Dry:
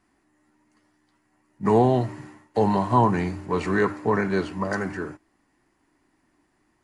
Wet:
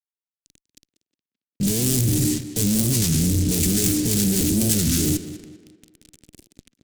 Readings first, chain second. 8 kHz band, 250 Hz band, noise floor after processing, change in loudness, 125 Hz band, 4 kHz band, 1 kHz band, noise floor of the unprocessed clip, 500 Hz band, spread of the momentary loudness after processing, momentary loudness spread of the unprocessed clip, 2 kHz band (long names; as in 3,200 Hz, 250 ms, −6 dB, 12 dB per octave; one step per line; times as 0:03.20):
can't be measured, +4.5 dB, below −85 dBFS, +4.0 dB, +6.0 dB, +17.0 dB, −22.5 dB, −69 dBFS, −7.5 dB, 5 LU, 12 LU, −6.5 dB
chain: adaptive Wiener filter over 9 samples
low-shelf EQ 190 Hz +6 dB
notch filter 840 Hz, Q 15
reversed playback
downward compressor 5 to 1, threshold −34 dBFS, peak gain reduction 19 dB
reversed playback
wrap-around overflow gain 26 dB
speech leveller 2 s
fuzz pedal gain 60 dB, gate −57 dBFS
drawn EQ curve 290 Hz 0 dB, 1,000 Hz −28 dB, 7,600 Hz +14 dB
on a send: tape delay 195 ms, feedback 46%, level −11.5 dB, low-pass 3,600 Hz
on the sum: wow of a warped record 33 1/3 rpm, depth 250 cents
level −5 dB